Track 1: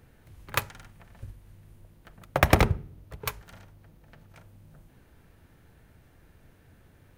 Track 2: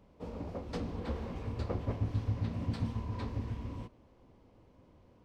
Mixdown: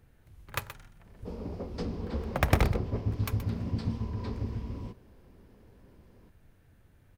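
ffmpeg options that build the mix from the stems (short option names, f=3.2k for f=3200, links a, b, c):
-filter_complex "[0:a]volume=-7dB,asplit=2[a][b];[b]volume=-12dB[c];[1:a]equalizer=f=200:t=o:w=0.33:g=7,equalizer=f=400:t=o:w=0.33:g=8,equalizer=f=5k:t=o:w=0.33:g=7,adelay=1050,volume=-1dB[d];[c]aecho=0:1:125:1[e];[a][d][e]amix=inputs=3:normalize=0,lowshelf=f=100:g=6.5"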